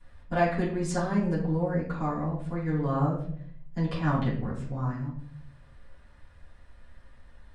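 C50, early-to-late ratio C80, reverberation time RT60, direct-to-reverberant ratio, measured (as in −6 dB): 4.5 dB, 8.5 dB, 0.60 s, −12.0 dB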